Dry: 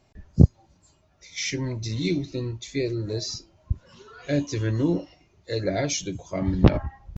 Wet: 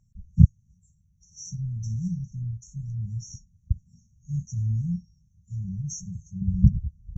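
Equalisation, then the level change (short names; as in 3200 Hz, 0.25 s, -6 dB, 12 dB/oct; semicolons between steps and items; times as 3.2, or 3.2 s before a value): brick-wall FIR band-stop 220–5500 Hz; low shelf 230 Hz +9.5 dB; bell 900 Hz +12 dB 2.4 oct; -7.5 dB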